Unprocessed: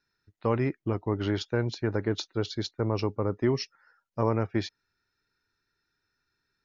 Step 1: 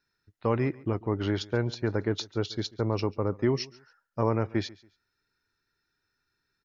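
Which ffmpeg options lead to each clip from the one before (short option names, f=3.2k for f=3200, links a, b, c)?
-af "aecho=1:1:140|280:0.0794|0.0222"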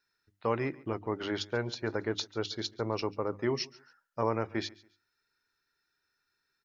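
-af "lowshelf=f=300:g=-10,bandreject=f=50:t=h:w=6,bandreject=f=100:t=h:w=6,bandreject=f=150:t=h:w=6,bandreject=f=200:t=h:w=6,bandreject=f=250:t=h:w=6,bandreject=f=300:t=h:w=6,bandreject=f=350:t=h:w=6"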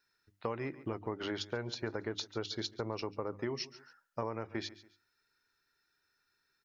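-af "acompressor=threshold=-35dB:ratio=6,volume=1.5dB"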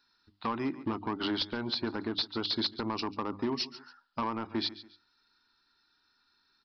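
-af "equalizer=f=125:t=o:w=1:g=-9,equalizer=f=250:t=o:w=1:g=8,equalizer=f=500:t=o:w=1:g=-12,equalizer=f=1k:t=o:w=1:g=7,equalizer=f=2k:t=o:w=1:g=-9,equalizer=f=4k:t=o:w=1:g=7,aresample=11025,asoftclip=type=hard:threshold=-33dB,aresample=44100,volume=7.5dB"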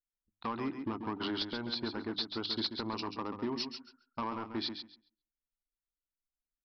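-af "anlmdn=0.0251,aecho=1:1:136|272|408:0.398|0.0637|0.0102,volume=-4dB"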